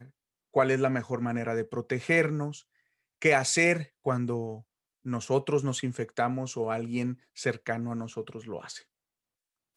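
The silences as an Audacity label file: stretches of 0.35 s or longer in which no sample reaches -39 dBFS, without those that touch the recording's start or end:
2.590000	3.220000	silence
4.590000	5.060000	silence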